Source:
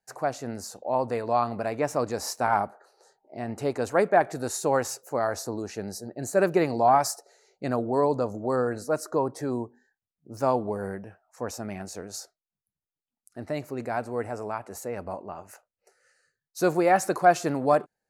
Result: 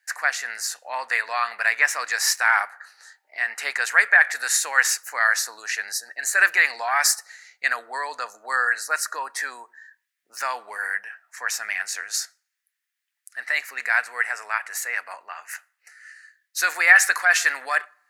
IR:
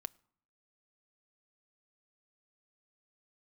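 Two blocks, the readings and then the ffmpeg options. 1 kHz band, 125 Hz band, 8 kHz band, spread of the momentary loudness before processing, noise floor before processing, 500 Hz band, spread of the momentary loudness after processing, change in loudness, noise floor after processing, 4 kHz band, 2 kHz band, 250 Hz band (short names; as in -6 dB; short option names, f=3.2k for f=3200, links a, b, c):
-1.5 dB, under -40 dB, +12.0 dB, 16 LU, under -85 dBFS, -13.5 dB, 15 LU, +5.5 dB, -81 dBFS, +12.5 dB, +18.0 dB, under -25 dB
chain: -filter_complex "[0:a]alimiter=limit=-15.5dB:level=0:latency=1:release=11,highpass=f=1.8k:t=q:w=4.7,asplit=2[a][b];[1:a]atrim=start_sample=2205,lowshelf=f=430:g=-11[c];[b][c]afir=irnorm=-1:irlink=0,volume=17.5dB[d];[a][d]amix=inputs=2:normalize=0,volume=-4dB"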